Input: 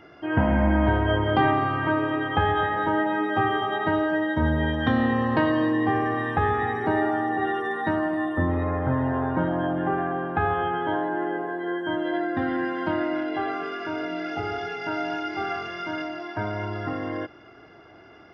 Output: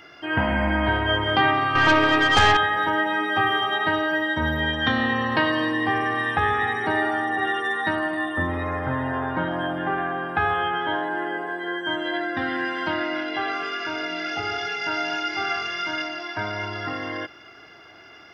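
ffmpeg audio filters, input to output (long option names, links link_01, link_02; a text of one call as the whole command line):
ffmpeg -i in.wav -filter_complex "[0:a]tiltshelf=frequency=1400:gain=-8.5,asettb=1/sr,asplit=3[link_01][link_02][link_03];[link_01]atrim=end=1.754[link_04];[link_02]atrim=start=1.75:end=2.57,asetpts=PTS-STARTPTS,afade=type=in:duration=0.004:curve=qsin,afade=type=out:start_time=0.816:duration=0.004:curve=qsin,aeval=exprs='0.237*(cos(1*acos(clip(val(0)/0.237,-1,1)))-cos(1*PI/2))+0.0596*(cos(5*acos(clip(val(0)/0.237,-1,1)))-cos(5*PI/2))+0.0335*(cos(6*acos(clip(val(0)/0.237,-1,1)))-cos(6*PI/2))':channel_layout=same[link_05];[link_03]atrim=start=2.566[link_06];[link_04][link_05]acrossfade=duration=0.004:curve1=hsin:curve2=qsin[link_07];[link_07][link_06]acrossfade=duration=0.004:curve1=qsin:curve2=hsin,volume=4.5dB" out.wav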